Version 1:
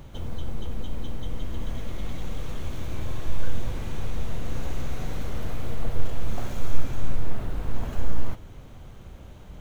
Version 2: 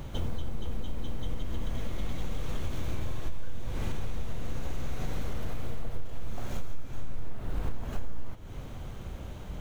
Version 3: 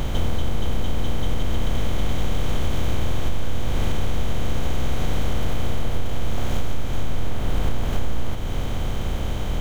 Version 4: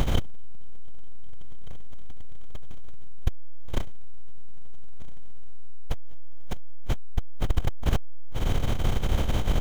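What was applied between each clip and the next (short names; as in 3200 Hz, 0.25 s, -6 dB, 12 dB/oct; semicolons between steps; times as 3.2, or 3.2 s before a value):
compressor 6:1, threshold -28 dBFS, peak gain reduction 18.5 dB; gain +4 dB
per-bin compression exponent 0.4; gain +6 dB
core saturation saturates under 71 Hz; gain +3.5 dB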